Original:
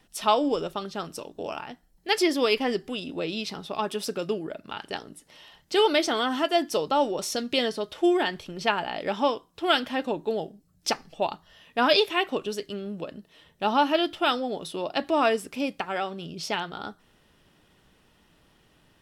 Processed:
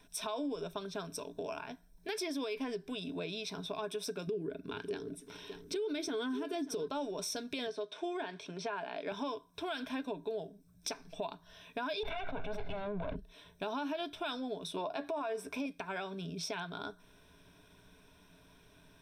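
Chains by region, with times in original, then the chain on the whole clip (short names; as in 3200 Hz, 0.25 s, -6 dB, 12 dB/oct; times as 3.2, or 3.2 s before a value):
4.27–6.88 resonant low shelf 510 Hz +6 dB, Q 3 + echo 0.587 s -19 dB
7.67–9.12 de-esser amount 100% + BPF 260–6900 Hz
12.03–13.16 minimum comb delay 1.4 ms + air absorption 460 m + fast leveller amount 100%
14.76–15.66 bell 850 Hz +9 dB 1.9 oct + doubler 14 ms -11 dB
whole clip: ripple EQ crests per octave 1.6, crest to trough 12 dB; limiter -17 dBFS; compressor 2.5:1, threshold -38 dBFS; gain -2 dB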